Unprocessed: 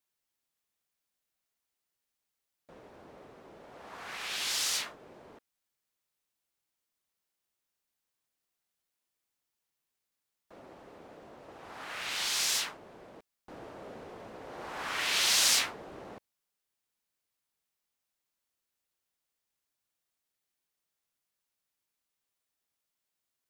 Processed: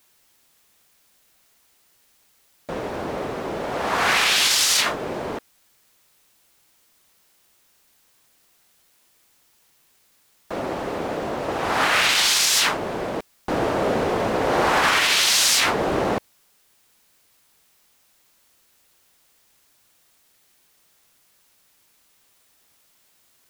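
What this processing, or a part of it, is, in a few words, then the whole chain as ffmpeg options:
loud club master: -af "acompressor=threshold=0.0158:ratio=1.5,asoftclip=type=hard:threshold=0.0841,alimiter=level_in=44.7:limit=0.891:release=50:level=0:latency=1,volume=0.376"

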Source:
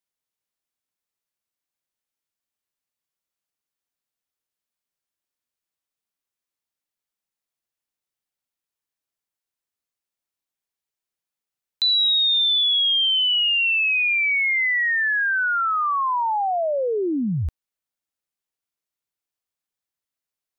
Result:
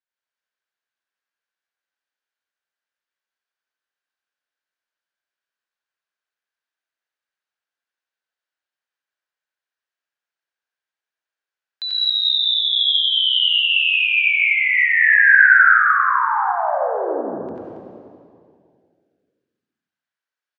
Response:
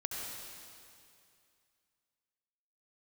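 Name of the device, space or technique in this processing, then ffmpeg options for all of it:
station announcement: -filter_complex "[0:a]highpass=450,lowpass=4200,equalizer=f=1600:t=o:w=0.29:g=10,aecho=1:1:90.38|277:0.891|0.316[s0];[1:a]atrim=start_sample=2205[s1];[s0][s1]afir=irnorm=-1:irlink=0,volume=0.794"

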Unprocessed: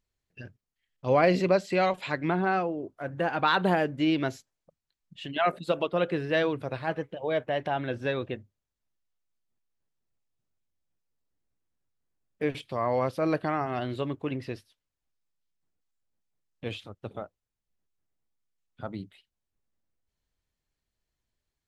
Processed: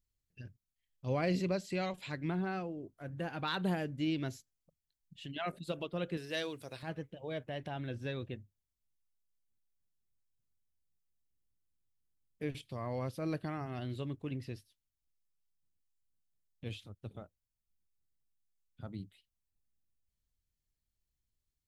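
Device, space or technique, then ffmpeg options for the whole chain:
smiley-face EQ: -filter_complex "[0:a]lowshelf=f=180:g=6.5,equalizer=f=890:t=o:w=2.9:g=-8.5,highshelf=f=6800:g=6.5,asettb=1/sr,asplit=3[s0][s1][s2];[s0]atrim=end=6.174[s3];[s1]atrim=start=6.17:end=6.83,asetpts=PTS-STARTPTS,afade=t=in:d=0.004:c=qsin,afade=t=out:st=0.656:d=0.004:c=qsin,bass=f=250:g=-12,treble=f=4000:g=12[s4];[s2]atrim=start=6.826[s5];[s3][s4]acrossfade=d=0.004:c1=hsin:c2=qsin[s6];[s6][s5]acrossfade=d=0.004:c1=qsin:c2=hsin,volume=0.473"

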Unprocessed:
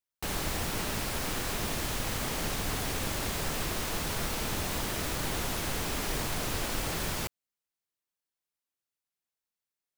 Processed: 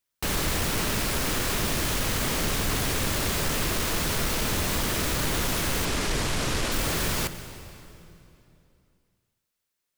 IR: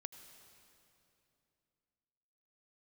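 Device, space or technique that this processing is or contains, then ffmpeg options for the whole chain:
saturated reverb return: -filter_complex "[0:a]asettb=1/sr,asplit=3[s0][s1][s2];[s0]atrim=end=5.854[s3];[s1]atrim=start=5.85:end=6.72,asetpts=PTS-STARTPTS,afade=t=in:d=0.004:c=qsin,afade=t=out:st=0.866:d=0.004:c=qsin,lowpass=9100[s4];[s2]atrim=start=6.716[s5];[s3][s4]acrossfade=d=0.004:c1=hsin:c2=qsin[s6];[s6][s5]acrossfade=d=0.004:c1=qsin:c2=hsin,asplit=2[s7][s8];[1:a]atrim=start_sample=2205[s9];[s8][s9]afir=irnorm=-1:irlink=0,asoftclip=type=tanh:threshold=0.0126,volume=2.66[s10];[s7][s10]amix=inputs=2:normalize=0,equalizer=f=780:t=o:w=0.52:g=-4,volume=1.12"

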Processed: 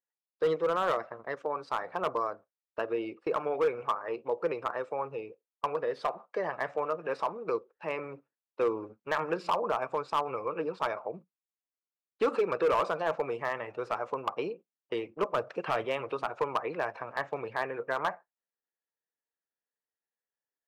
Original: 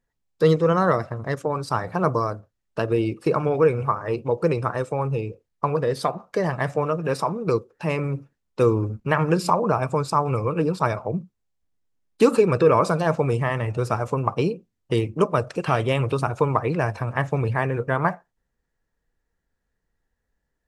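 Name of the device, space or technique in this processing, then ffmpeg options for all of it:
walkie-talkie: -filter_complex "[0:a]asettb=1/sr,asplit=3[s0][s1][s2];[s0]atrim=end=15.354[s3];[s1]atrim=start=15.35:end=15.85,asetpts=PTS-STARTPTS,afade=t=in:d=0.004:c=qsin,afade=t=out:st=0.496:d=0.004:c=qsin,lowshelf=f=220:g=8.5[s4];[s2]atrim=start=15.846[s5];[s3][s4]acrossfade=d=0.004:c1=hsin:c2=qsin[s6];[s6][s5]acrossfade=d=0.004:c1=qsin:c2=hsin,highpass=460,lowpass=2700,asoftclip=type=hard:threshold=0.168,agate=range=0.316:threshold=0.00891:ratio=16:detection=peak,volume=0.531"

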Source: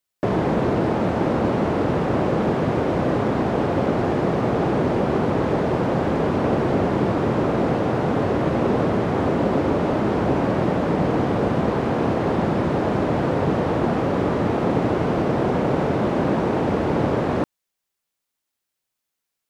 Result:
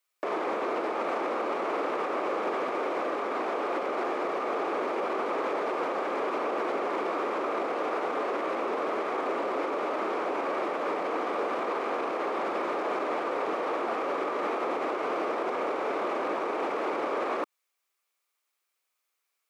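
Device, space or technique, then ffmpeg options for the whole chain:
laptop speaker: -af "highpass=f=360:w=0.5412,highpass=f=360:w=1.3066,equalizer=f=1200:t=o:w=0.31:g=9,equalizer=f=2300:t=o:w=0.31:g=7,alimiter=limit=0.0794:level=0:latency=1:release=81"

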